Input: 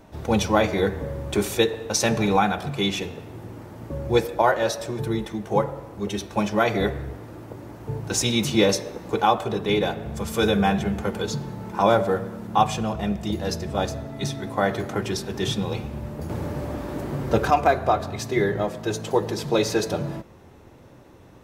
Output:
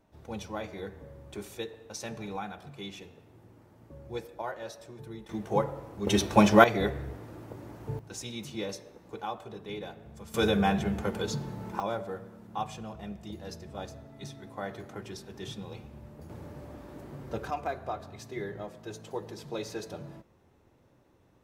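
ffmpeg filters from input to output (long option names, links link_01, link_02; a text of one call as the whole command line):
ffmpeg -i in.wav -af "asetnsamples=nb_out_samples=441:pad=0,asendcmd='5.29 volume volume -5.5dB;6.07 volume volume 4dB;6.64 volume volume -5.5dB;7.99 volume volume -17dB;10.34 volume volume -5dB;11.8 volume volume -15dB',volume=-17.5dB" out.wav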